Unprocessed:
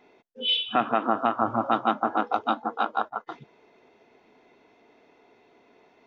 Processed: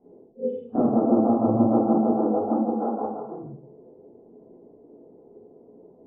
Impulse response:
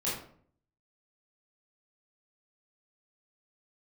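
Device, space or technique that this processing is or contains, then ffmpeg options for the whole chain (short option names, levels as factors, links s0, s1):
next room: -filter_complex "[0:a]lowpass=f=590:w=0.5412,lowpass=f=590:w=1.3066[s0];[1:a]atrim=start_sample=2205[s1];[s0][s1]afir=irnorm=-1:irlink=0,volume=1.41"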